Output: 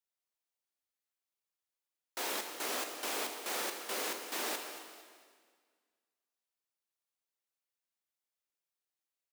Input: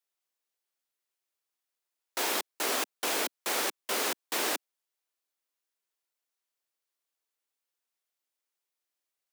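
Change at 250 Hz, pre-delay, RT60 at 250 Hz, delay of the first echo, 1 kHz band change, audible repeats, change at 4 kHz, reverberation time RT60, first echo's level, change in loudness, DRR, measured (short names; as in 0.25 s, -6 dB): -6.0 dB, 7 ms, 1.9 s, 0.227 s, -6.0 dB, 3, -6.0 dB, 1.8 s, -12.5 dB, -6.5 dB, 4.0 dB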